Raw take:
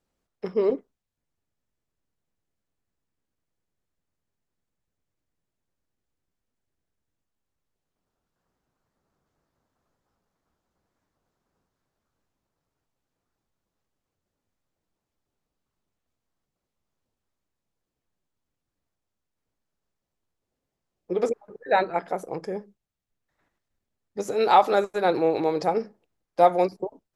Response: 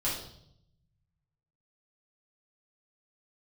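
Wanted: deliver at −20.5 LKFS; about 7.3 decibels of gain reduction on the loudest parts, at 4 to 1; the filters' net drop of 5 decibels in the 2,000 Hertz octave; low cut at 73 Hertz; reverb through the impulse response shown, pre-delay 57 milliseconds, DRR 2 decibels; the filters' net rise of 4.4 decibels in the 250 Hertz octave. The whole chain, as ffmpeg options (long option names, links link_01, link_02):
-filter_complex "[0:a]highpass=73,equalizer=frequency=250:width_type=o:gain=7,equalizer=frequency=2000:width_type=o:gain=-7,acompressor=threshold=-20dB:ratio=4,asplit=2[link_01][link_02];[1:a]atrim=start_sample=2205,adelay=57[link_03];[link_02][link_03]afir=irnorm=-1:irlink=0,volume=-8.5dB[link_04];[link_01][link_04]amix=inputs=2:normalize=0,volume=4.5dB"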